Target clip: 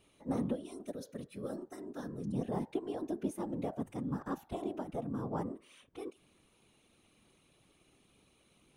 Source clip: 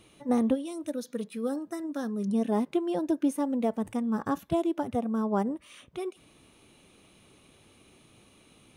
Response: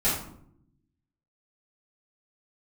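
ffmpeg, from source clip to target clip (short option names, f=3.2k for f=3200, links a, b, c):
-af "bandreject=f=167.7:t=h:w=4,bandreject=f=335.4:t=h:w=4,bandreject=f=503.1:t=h:w=4,bandreject=f=670.8:t=h:w=4,bandreject=f=838.5:t=h:w=4,bandreject=f=1.0062k:t=h:w=4,bandreject=f=1.1739k:t=h:w=4,bandreject=f=1.3416k:t=h:w=4,bandreject=f=1.5093k:t=h:w=4,bandreject=f=1.677k:t=h:w=4,bandreject=f=1.8447k:t=h:w=4,afftfilt=real='hypot(re,im)*cos(2*PI*random(0))':imag='hypot(re,im)*sin(2*PI*random(1))':win_size=512:overlap=0.75,volume=-3.5dB"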